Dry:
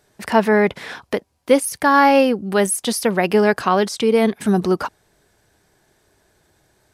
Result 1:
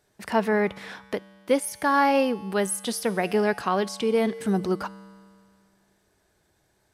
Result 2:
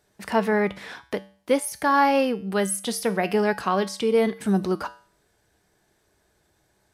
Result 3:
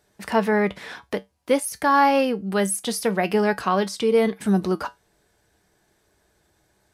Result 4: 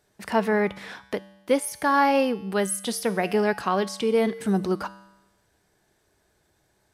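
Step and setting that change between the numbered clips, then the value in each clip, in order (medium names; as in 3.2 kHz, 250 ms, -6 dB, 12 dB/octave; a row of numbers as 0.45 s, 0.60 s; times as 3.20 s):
feedback comb, decay: 2.1 s, 0.45 s, 0.18 s, 1 s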